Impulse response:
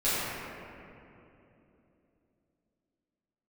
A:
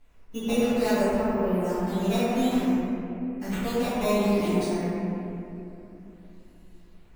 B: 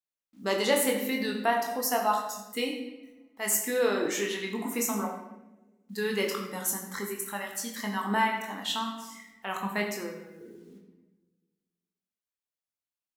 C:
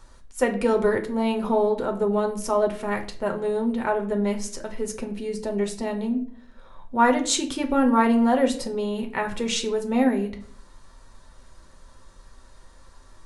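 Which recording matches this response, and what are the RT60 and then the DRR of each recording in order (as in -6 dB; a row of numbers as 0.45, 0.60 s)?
A; 3.0, 1.1, 0.55 s; -15.0, 0.5, 3.5 dB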